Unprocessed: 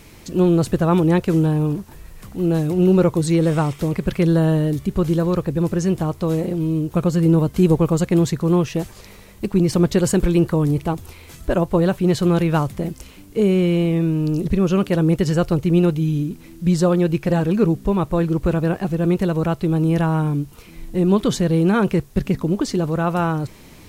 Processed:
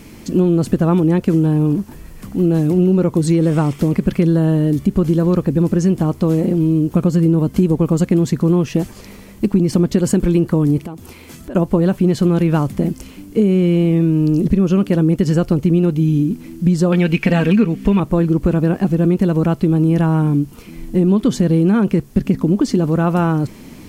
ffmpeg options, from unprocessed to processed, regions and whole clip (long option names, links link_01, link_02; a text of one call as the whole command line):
ffmpeg -i in.wav -filter_complex "[0:a]asettb=1/sr,asplit=3[link_01][link_02][link_03];[link_01]atrim=end=10.784[link_04];[link_02]atrim=start=10.78:end=11.55,asetpts=PTS-STARTPTS,afade=type=in:duration=0.004:curve=qsin,afade=type=out:start_time=0.766:duration=0.004:curve=qsin,lowshelf=frequency=69:gain=-11.5,acompressor=threshold=-33dB:ratio=6:attack=3.2:release=140:knee=1:detection=peak[link_05];[link_03]atrim=start=11.546[link_06];[link_04][link_05]acrossfade=duration=0.004:curve1=hsin:curve2=qsin[link_07];[link_07][link_06]acrossfade=duration=0.004:curve1=qsin:curve2=hsin,asettb=1/sr,asplit=3[link_08][link_09][link_10];[link_08]atrim=end=16.924[link_11];[link_09]atrim=start=16.92:end=18,asetpts=PTS-STARTPTS,afade=type=in:duration=0.004:curve=qsin,afade=type=out:start_time=1.076:duration=0.004:curve=qsin,equalizer=frequency=2400:width_type=o:width=1.5:gain=14.5,aecho=1:1:4.4:0.41,atrim=end_sample=47628[link_12];[link_10]atrim=start=17.996[link_13];[link_11][link_12]acrossfade=duration=0.004:curve1=hsin:curve2=qsin[link_14];[link_14][link_13]acrossfade=duration=0.004:curve1=qsin:curve2=hsin,equalizer=frequency=240:width_type=o:width=1:gain=10,bandreject=frequency=3800:width=16,acompressor=threshold=-13dB:ratio=6,volume=2.5dB" out.wav